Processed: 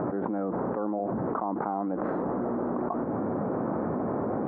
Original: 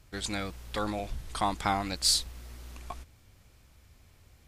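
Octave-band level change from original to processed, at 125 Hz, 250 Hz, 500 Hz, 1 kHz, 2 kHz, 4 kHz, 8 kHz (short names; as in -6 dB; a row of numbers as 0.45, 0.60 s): +4.5 dB, +11.0 dB, +10.5 dB, +2.5 dB, -5.0 dB, under -40 dB, under -40 dB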